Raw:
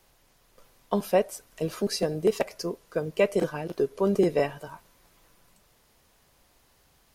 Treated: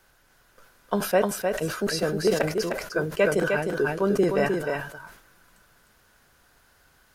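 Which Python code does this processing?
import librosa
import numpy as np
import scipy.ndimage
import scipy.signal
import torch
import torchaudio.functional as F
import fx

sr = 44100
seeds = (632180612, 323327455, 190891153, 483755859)

p1 = fx.peak_eq(x, sr, hz=1500.0, db=13.0, octaves=0.38)
p2 = p1 + fx.echo_single(p1, sr, ms=306, db=-5.0, dry=0)
y = fx.sustainer(p2, sr, db_per_s=86.0)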